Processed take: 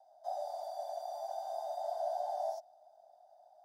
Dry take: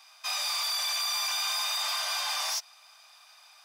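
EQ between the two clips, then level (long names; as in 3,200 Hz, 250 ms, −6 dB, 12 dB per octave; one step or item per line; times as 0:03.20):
elliptic low-pass filter 710 Hz, stop band 40 dB
+12.0 dB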